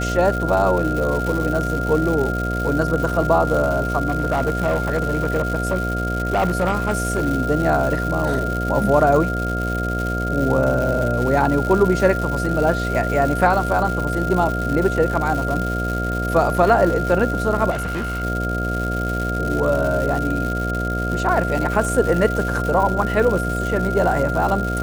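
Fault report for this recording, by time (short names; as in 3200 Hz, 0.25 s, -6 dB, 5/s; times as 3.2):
buzz 60 Hz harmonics 12 -24 dBFS
crackle 280/s -24 dBFS
tone 1400 Hz -25 dBFS
4.08–7.27 clipped -14 dBFS
17.7–18.24 clipped -21 dBFS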